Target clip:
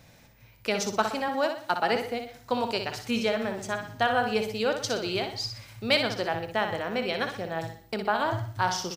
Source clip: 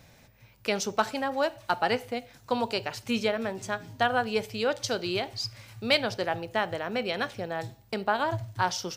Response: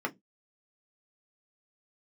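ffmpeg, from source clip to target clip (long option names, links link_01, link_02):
-filter_complex "[0:a]asettb=1/sr,asplit=3[link_01][link_02][link_03];[link_01]atrim=end=1.284[link_04];[link_02]atrim=start=1.28:end=1.96,asetpts=PTS-STARTPTS,afade=type=in:duration=0.004:curve=qsin,afade=type=out:start_time=0.676:duration=0.004:curve=qsin,highpass=frequency=140:width=0.5412,highpass=frequency=140:width=1.3066[link_05];[link_03]atrim=start=1.956[link_06];[link_04][link_05]acrossfade=duration=0.004:curve1=hsin:curve2=qsin[link_07];[link_07][link_06]acrossfade=duration=0.004:curve1=qsin:curve2=hsin,aecho=1:1:61|122|183|244:0.447|0.17|0.0645|0.0245,asplit=2[link_08][link_09];[1:a]atrim=start_sample=2205,adelay=121[link_10];[link_09][link_10]afir=irnorm=-1:irlink=0,volume=-24dB[link_11];[link_08][link_11]amix=inputs=2:normalize=0"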